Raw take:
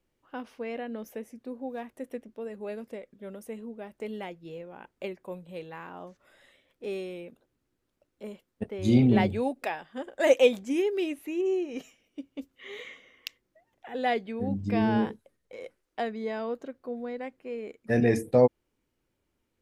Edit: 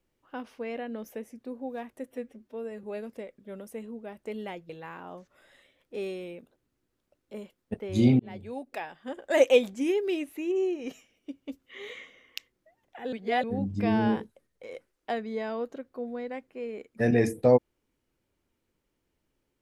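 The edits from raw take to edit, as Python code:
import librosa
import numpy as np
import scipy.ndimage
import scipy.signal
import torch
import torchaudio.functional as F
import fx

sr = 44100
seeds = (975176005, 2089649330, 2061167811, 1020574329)

y = fx.edit(x, sr, fx.stretch_span(start_s=2.07, length_s=0.51, factor=1.5),
    fx.cut(start_s=4.44, length_s=1.15),
    fx.fade_in_span(start_s=9.09, length_s=0.97),
    fx.reverse_span(start_s=14.02, length_s=0.31), tone=tone)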